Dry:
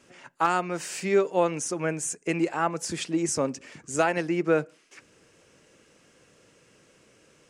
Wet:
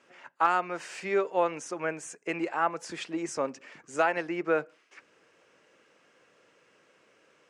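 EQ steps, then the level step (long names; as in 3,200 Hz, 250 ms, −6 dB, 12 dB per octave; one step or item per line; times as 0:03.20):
resonant band-pass 1,200 Hz, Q 0.56
0.0 dB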